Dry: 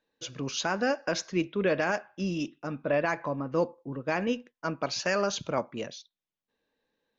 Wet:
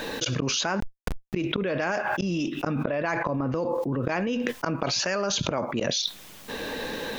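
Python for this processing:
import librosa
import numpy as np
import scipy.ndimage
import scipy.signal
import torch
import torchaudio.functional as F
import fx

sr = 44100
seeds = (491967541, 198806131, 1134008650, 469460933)

y = fx.gate_flip(x, sr, shuts_db=-26.0, range_db=-29)
y = fx.schmitt(y, sr, flips_db=-46.5, at=(0.8, 1.34))
y = fx.env_flatten(y, sr, amount_pct=100)
y = F.gain(torch.from_numpy(y), 7.0).numpy()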